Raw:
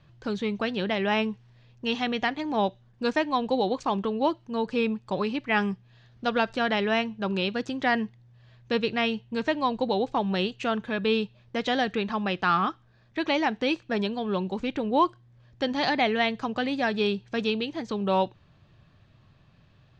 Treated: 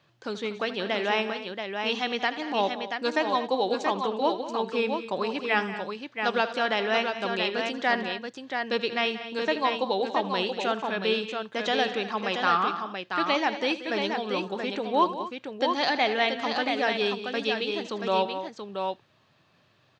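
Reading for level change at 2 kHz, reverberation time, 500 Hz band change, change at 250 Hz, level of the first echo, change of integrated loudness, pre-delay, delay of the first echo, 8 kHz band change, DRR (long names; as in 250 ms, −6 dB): +1.5 dB, no reverb audible, +0.5 dB, −4.5 dB, −15.0 dB, 0.0 dB, no reverb audible, 80 ms, can't be measured, no reverb audible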